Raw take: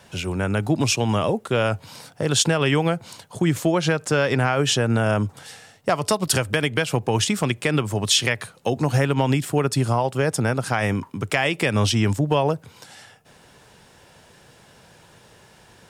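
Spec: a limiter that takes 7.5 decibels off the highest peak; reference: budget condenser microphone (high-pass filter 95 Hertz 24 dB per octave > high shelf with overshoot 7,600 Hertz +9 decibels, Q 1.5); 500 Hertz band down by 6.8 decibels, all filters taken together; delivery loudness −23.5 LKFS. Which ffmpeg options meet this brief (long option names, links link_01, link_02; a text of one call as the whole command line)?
ffmpeg -i in.wav -af "equalizer=frequency=500:width_type=o:gain=-8.5,alimiter=limit=-12dB:level=0:latency=1,highpass=frequency=95:width=0.5412,highpass=frequency=95:width=1.3066,highshelf=frequency=7600:width_type=q:width=1.5:gain=9,volume=0.5dB" out.wav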